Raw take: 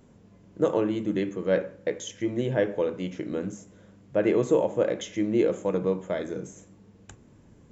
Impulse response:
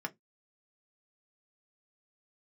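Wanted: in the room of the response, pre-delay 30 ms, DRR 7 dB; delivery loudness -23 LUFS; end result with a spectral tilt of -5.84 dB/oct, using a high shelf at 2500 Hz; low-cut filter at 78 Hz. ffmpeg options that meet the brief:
-filter_complex "[0:a]highpass=78,highshelf=f=2.5k:g=-6.5,asplit=2[a][b];[1:a]atrim=start_sample=2205,adelay=30[c];[b][c]afir=irnorm=-1:irlink=0,volume=-9dB[d];[a][d]amix=inputs=2:normalize=0,volume=4dB"

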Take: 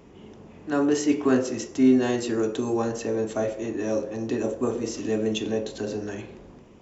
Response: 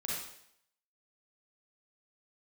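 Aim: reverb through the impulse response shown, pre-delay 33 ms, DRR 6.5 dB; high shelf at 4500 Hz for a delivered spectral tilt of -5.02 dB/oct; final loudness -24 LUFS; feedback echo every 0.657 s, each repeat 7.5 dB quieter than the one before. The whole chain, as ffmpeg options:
-filter_complex "[0:a]highshelf=f=4.5k:g=-8.5,aecho=1:1:657|1314|1971|2628|3285:0.422|0.177|0.0744|0.0312|0.0131,asplit=2[a][b];[1:a]atrim=start_sample=2205,adelay=33[c];[b][c]afir=irnorm=-1:irlink=0,volume=-9.5dB[d];[a][d]amix=inputs=2:normalize=0,volume=1dB"

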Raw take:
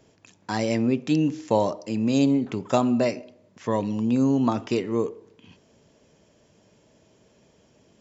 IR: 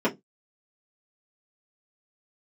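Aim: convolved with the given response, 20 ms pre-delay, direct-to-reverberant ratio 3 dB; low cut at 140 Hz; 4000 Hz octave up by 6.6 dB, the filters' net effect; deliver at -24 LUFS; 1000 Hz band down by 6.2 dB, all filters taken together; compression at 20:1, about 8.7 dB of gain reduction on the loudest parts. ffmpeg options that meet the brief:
-filter_complex "[0:a]highpass=140,equalizer=f=1k:t=o:g=-8.5,equalizer=f=4k:t=o:g=8.5,acompressor=threshold=-26dB:ratio=20,asplit=2[a][b];[1:a]atrim=start_sample=2205,adelay=20[c];[b][c]afir=irnorm=-1:irlink=0,volume=-16.5dB[d];[a][d]amix=inputs=2:normalize=0,volume=1dB"

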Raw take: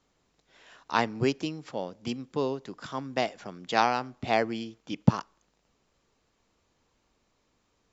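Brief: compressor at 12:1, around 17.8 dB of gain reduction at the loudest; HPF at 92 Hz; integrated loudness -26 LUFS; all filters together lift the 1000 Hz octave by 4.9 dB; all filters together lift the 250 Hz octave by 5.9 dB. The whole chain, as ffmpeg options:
-af "highpass=92,equalizer=f=250:t=o:g=7,equalizer=f=1k:t=o:g=6,acompressor=threshold=-27dB:ratio=12,volume=8.5dB"

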